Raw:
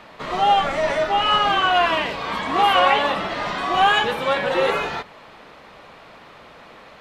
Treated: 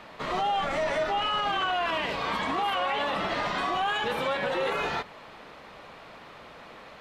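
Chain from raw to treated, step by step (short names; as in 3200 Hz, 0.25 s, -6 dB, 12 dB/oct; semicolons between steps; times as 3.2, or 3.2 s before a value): limiter -17.5 dBFS, peak gain reduction 11.5 dB; gain -2.5 dB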